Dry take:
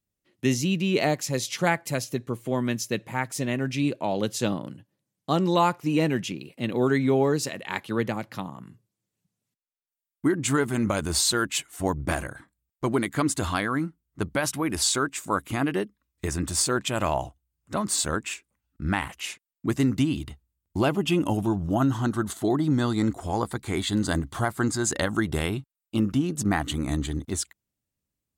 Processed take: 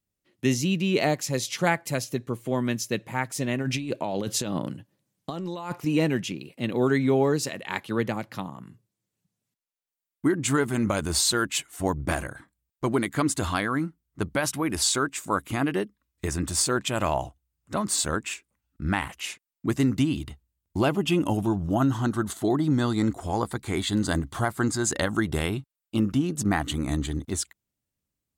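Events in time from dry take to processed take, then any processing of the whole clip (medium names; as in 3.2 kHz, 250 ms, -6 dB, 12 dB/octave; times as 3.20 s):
3.61–5.85 s: compressor with a negative ratio -30 dBFS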